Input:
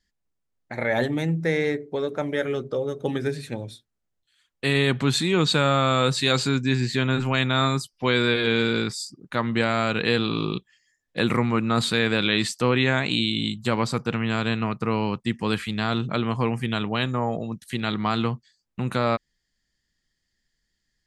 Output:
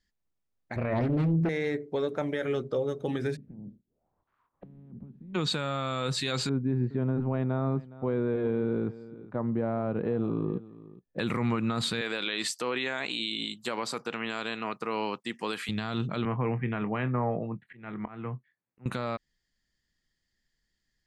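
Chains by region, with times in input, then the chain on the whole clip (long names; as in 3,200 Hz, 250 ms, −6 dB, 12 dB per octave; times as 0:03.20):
0:00.76–0:01.49: spectral tilt −3.5 dB per octave + highs frequency-modulated by the lows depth 0.87 ms
0:03.35–0:05.34: ceiling on every frequency bin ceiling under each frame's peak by 22 dB + downward compressor 8 to 1, threshold −36 dBFS + envelope-controlled low-pass 200–1,200 Hz down, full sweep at −42.5 dBFS
0:06.49–0:11.19: Chebyshev low-pass filter 620 Hz + single-tap delay 414 ms −19 dB
0:12.01–0:15.69: high-pass filter 350 Hz + high-shelf EQ 6,900 Hz +5.5 dB
0:16.25–0:18.86: elliptic band-pass filter 110–2,200 Hz + volume swells 509 ms + double-tracking delay 24 ms −13 dB
whole clip: high-shelf EQ 5,800 Hz −4.5 dB; brickwall limiter −17 dBFS; level −2.5 dB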